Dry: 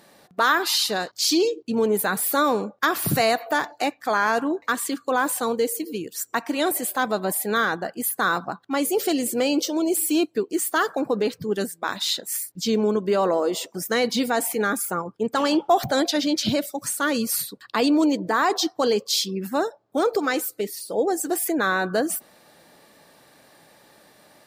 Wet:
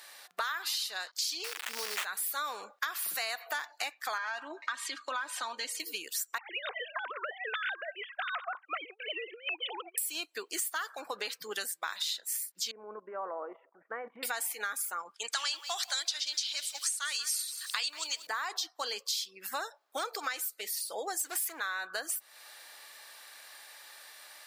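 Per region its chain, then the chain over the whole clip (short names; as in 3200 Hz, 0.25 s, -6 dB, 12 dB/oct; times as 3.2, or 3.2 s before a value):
1.44–2.05 switching spikes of -19.5 dBFS + sample-rate reducer 5100 Hz, jitter 20%
4.18–5.8 LPF 4800 Hz + comb 3.2 ms, depth 74% + compressor 1.5:1, threshold -29 dBFS
6.38–9.98 sine-wave speech + HPF 380 Hz 24 dB/oct + negative-ratio compressor -30 dBFS, ratio -0.5
12.71–14.23 Gaussian blur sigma 6.9 samples + level quantiser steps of 14 dB
15.14–18.27 weighting filter ITU-R 468 + lo-fi delay 0.184 s, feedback 35%, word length 6-bit, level -15 dB
21.19–21.6 sample leveller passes 2 + three-band expander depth 40%
whole clip: HPF 1400 Hz 12 dB/oct; compressor 6:1, threshold -39 dBFS; gain +6 dB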